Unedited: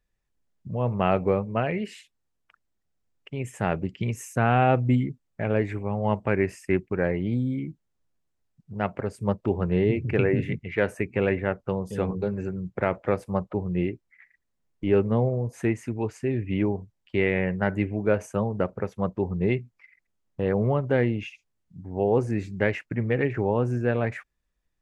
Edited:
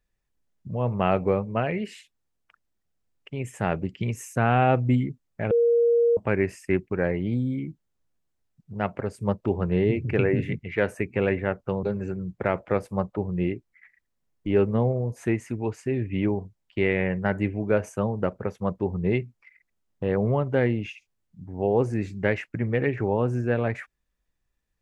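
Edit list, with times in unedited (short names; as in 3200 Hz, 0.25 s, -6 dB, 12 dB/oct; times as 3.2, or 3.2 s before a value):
5.51–6.17 bleep 470 Hz -16.5 dBFS
11.83–12.2 cut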